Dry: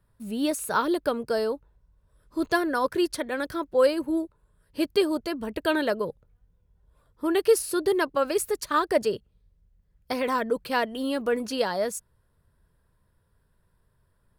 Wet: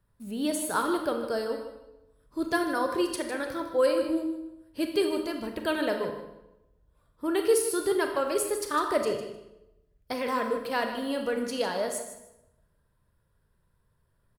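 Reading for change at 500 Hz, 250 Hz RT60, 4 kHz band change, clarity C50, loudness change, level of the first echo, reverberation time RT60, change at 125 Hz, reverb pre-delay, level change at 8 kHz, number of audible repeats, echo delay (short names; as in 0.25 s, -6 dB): -2.5 dB, 0.95 s, -2.5 dB, 5.5 dB, -2.5 dB, -11.0 dB, 0.95 s, -2.5 dB, 27 ms, +0.5 dB, 2, 0.153 s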